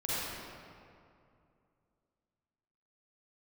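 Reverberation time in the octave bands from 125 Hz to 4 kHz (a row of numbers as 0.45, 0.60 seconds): 2.9, 2.8, 2.6, 2.4, 1.9, 1.4 seconds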